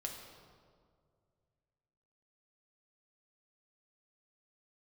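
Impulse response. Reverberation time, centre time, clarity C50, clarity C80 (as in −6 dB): 2.1 s, 56 ms, 4.0 dB, 5.5 dB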